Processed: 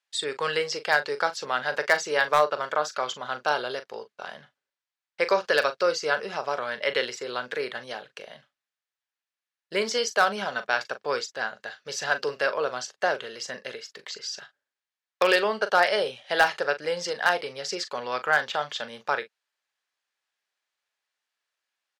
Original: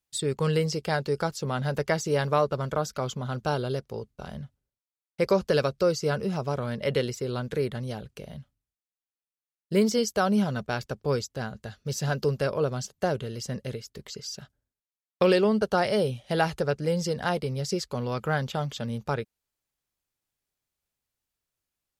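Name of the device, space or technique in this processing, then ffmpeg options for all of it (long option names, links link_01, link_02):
megaphone: -filter_complex "[0:a]highpass=690,lowpass=3600,equalizer=frequency=1700:width_type=o:width=0.32:gain=5.5,asoftclip=type=hard:threshold=-16.5dB,aemphasis=mode=production:type=cd,asplit=2[link_01][link_02];[link_02]adelay=40,volume=-12dB[link_03];[link_01][link_03]amix=inputs=2:normalize=0,volume=6dB"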